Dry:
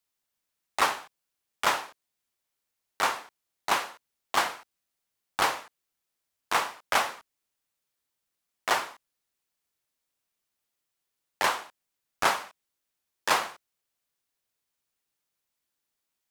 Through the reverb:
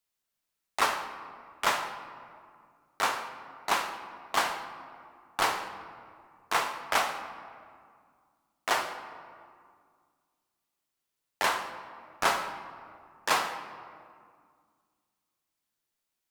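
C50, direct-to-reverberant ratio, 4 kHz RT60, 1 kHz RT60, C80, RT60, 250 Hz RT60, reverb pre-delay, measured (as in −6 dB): 8.0 dB, 6.0 dB, 1.1 s, 2.1 s, 10.0 dB, 2.1 s, 2.6 s, 3 ms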